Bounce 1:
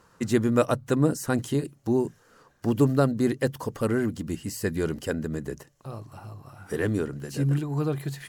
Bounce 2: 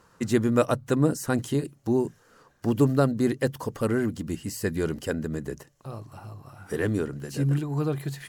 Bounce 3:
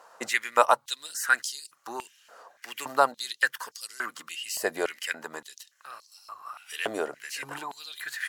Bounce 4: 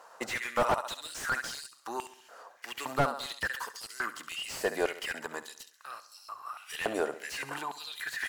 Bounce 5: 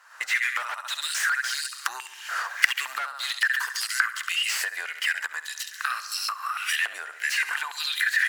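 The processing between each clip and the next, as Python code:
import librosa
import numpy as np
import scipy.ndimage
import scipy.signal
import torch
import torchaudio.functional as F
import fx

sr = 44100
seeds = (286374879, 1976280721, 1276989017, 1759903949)

y1 = x
y2 = fx.filter_held_highpass(y1, sr, hz=3.5, low_hz=680.0, high_hz=4900.0)
y2 = y2 * 10.0 ** (3.0 / 20.0)
y3 = fx.echo_feedback(y2, sr, ms=68, feedback_pct=49, wet_db=-15.0)
y3 = fx.slew_limit(y3, sr, full_power_hz=69.0)
y4 = fx.recorder_agc(y3, sr, target_db=-18.0, rise_db_per_s=55.0, max_gain_db=30)
y4 = fx.highpass_res(y4, sr, hz=1700.0, q=2.3)
y4 = y4 * 10.0 ** (-2.0 / 20.0)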